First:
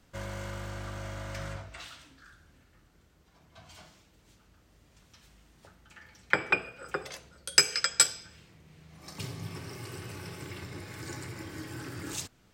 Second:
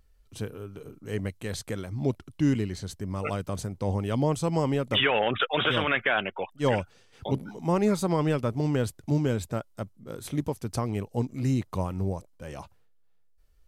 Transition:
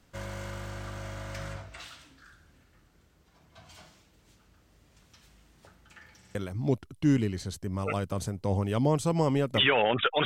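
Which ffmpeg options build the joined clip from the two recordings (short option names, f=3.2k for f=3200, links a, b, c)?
-filter_complex "[0:a]apad=whole_dur=10.25,atrim=end=10.25,asplit=3[a][b][c];[a]atrim=end=6.232[d];[b]atrim=start=6.168:end=6.232[e];[c]atrim=start=6.168:end=6.232[f];[1:a]atrim=start=1.718:end=5.62[g];[d][e]acrossfade=d=0.004:c1=hsin:c2=hsin[h];[h][f]acrossfade=d=0.004:c1=hsin:c2=hsin[i];[i][g]acrossfade=d=0.004:c1=hsin:c2=hsin"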